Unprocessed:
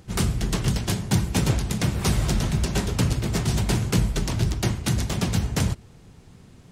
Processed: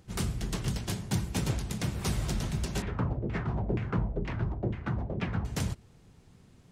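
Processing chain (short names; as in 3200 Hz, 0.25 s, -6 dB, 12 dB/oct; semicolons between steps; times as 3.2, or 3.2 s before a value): 2.82–5.45 LFO low-pass saw down 2.1 Hz 400–2500 Hz; gain -8.5 dB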